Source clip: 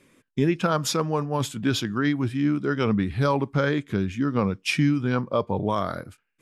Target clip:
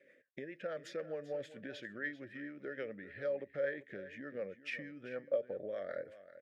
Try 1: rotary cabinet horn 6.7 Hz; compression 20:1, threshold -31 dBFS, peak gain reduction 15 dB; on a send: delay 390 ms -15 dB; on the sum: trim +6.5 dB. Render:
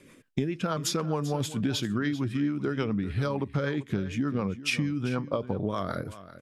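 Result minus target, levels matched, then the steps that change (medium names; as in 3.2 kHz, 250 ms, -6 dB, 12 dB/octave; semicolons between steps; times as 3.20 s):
1 kHz band +7.0 dB
add after compression: two resonant band-passes 1 kHz, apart 1.7 oct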